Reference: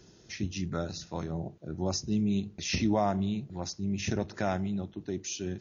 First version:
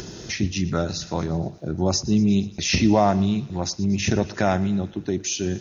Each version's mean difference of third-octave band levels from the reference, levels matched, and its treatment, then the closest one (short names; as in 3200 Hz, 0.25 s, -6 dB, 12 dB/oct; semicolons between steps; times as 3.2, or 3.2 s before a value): 2.0 dB: in parallel at +2.5 dB: upward compressor, threshold -30 dBFS; on the sum: thinning echo 0.117 s, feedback 66%, high-pass 880 Hz, level -18 dB; gain +2 dB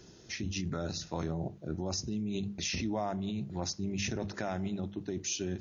3.0 dB: notches 50/100/150/200 Hz; in parallel at +2.5 dB: negative-ratio compressor -35 dBFS, ratio -0.5; on the sum: gain -7.5 dB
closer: first